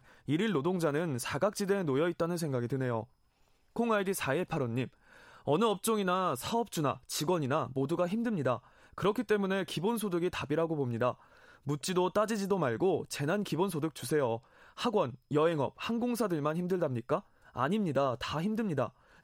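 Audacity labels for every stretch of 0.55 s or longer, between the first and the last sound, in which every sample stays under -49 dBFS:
3.040000	3.760000	silence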